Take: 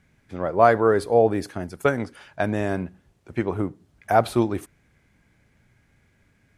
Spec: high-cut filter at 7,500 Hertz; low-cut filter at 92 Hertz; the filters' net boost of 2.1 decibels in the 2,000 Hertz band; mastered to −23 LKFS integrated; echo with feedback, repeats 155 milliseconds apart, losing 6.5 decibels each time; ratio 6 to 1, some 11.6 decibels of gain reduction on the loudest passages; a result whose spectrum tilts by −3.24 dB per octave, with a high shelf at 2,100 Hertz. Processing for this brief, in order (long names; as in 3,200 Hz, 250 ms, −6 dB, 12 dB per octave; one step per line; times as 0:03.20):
high-pass filter 92 Hz
low-pass filter 7,500 Hz
parametric band 2,000 Hz +5.5 dB
high-shelf EQ 2,100 Hz −4.5 dB
downward compressor 6 to 1, threshold −24 dBFS
repeating echo 155 ms, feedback 47%, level −6.5 dB
level +7.5 dB